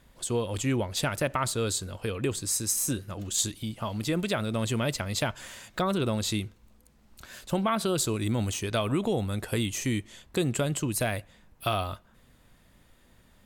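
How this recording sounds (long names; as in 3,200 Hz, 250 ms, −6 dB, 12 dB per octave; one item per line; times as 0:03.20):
background noise floor −61 dBFS
spectral slope −4.0 dB per octave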